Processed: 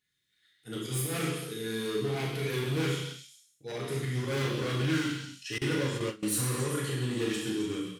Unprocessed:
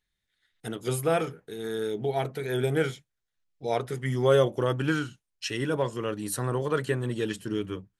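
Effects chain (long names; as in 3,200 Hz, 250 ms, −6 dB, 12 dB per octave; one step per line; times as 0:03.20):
volume swells 111 ms
double-tracking delay 37 ms −6 dB
gain into a clipping stage and back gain 28.5 dB
high-pass filter 120 Hz 12 dB per octave
parametric band 740 Hz −12.5 dB 1.1 octaves
echo through a band-pass that steps 132 ms, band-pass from 3,600 Hz, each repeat 0.7 octaves, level −5 dB
reverb whose tail is shaped and stops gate 310 ms falling, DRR −3 dB
0:05.58–0:06.23: noise gate with hold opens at −21 dBFS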